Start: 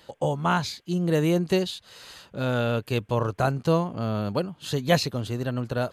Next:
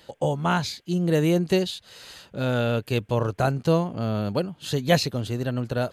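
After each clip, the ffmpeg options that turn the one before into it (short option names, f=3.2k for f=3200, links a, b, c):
-af "equalizer=f=1.1k:t=o:w=0.59:g=-4,volume=1.5dB"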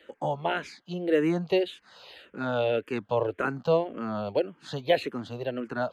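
-filter_complex "[0:a]acrossover=split=240 3500:gain=0.178 1 0.126[a][b][c];[a][b][c]amix=inputs=3:normalize=0,alimiter=level_in=11dB:limit=-1dB:release=50:level=0:latency=1,asplit=2[d][e];[e]afreqshift=-1.8[f];[d][f]amix=inputs=2:normalize=1,volume=-9dB"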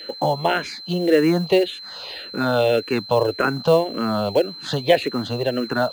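-filter_complex "[0:a]asplit=2[a][b];[b]acompressor=threshold=-34dB:ratio=16,volume=2dB[c];[a][c]amix=inputs=2:normalize=0,aeval=exprs='val(0)+0.01*sin(2*PI*4100*n/s)':c=same,acrusher=bits=7:mode=log:mix=0:aa=0.000001,volume=5.5dB"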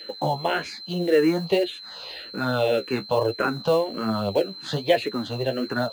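-af "flanger=delay=8.5:depth=7.4:regen=36:speed=1.2:shape=sinusoidal"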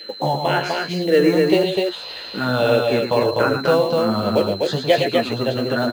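-af "aecho=1:1:110.8|250.7:0.447|0.708,volume=3.5dB"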